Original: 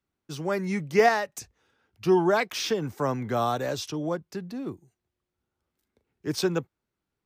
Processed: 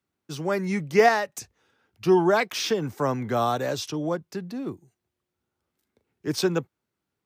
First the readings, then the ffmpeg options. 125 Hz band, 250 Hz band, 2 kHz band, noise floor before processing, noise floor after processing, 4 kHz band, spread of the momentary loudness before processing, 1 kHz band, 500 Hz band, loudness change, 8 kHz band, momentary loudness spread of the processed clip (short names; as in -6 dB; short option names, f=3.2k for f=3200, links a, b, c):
+1.5 dB, +2.0 dB, +2.0 dB, -85 dBFS, -84 dBFS, +2.0 dB, 15 LU, +2.0 dB, +2.0 dB, +2.0 dB, +2.0 dB, 15 LU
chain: -af "highpass=82,volume=2dB"